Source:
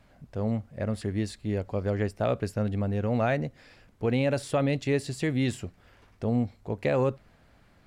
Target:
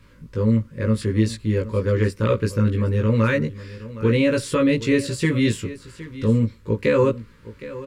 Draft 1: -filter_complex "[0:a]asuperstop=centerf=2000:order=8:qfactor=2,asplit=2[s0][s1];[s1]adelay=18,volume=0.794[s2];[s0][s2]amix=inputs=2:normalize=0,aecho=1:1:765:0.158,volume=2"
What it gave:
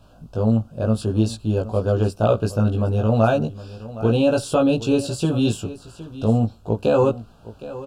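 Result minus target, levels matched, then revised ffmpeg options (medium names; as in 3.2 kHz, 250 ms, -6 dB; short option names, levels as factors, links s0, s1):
2 kHz band -7.0 dB
-filter_complex "[0:a]asuperstop=centerf=720:order=8:qfactor=2,asplit=2[s0][s1];[s1]adelay=18,volume=0.794[s2];[s0][s2]amix=inputs=2:normalize=0,aecho=1:1:765:0.158,volume=2"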